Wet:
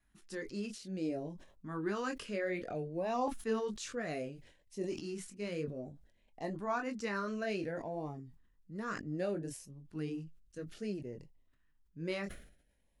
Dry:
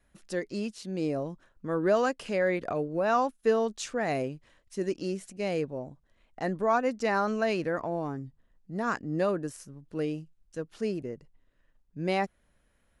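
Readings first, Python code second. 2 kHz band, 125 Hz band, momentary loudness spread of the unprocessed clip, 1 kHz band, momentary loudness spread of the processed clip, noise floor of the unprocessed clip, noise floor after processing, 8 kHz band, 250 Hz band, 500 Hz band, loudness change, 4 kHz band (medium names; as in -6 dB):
-8.0 dB, -6.5 dB, 14 LU, -10.5 dB, 12 LU, -70 dBFS, -72 dBFS, -5.0 dB, -7.0 dB, -10.0 dB, -9.0 dB, -6.5 dB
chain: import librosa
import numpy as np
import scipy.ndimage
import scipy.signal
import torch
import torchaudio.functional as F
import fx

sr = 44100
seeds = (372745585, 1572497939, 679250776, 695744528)

y = fx.chorus_voices(x, sr, voices=4, hz=1.1, base_ms=22, depth_ms=3.0, mix_pct=35)
y = fx.filter_lfo_notch(y, sr, shape='saw_up', hz=0.61, low_hz=490.0, high_hz=1600.0, q=1.4)
y = fx.sustainer(y, sr, db_per_s=89.0)
y = y * 10.0 ** (-4.5 / 20.0)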